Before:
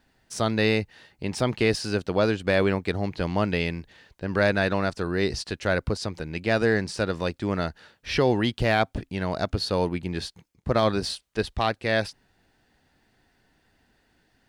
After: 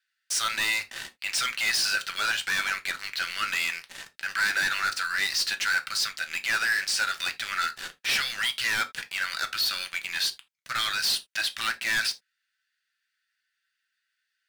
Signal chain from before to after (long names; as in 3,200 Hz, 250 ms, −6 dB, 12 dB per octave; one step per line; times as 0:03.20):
elliptic high-pass filter 1,400 Hz, stop band 40 dB
leveller curve on the samples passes 5
downward compressor, threshold −24 dBFS, peak gain reduction 7.5 dB
brickwall limiter −21.5 dBFS, peak gain reduction 6 dB
convolution reverb, pre-delay 5 ms, DRR 6.5 dB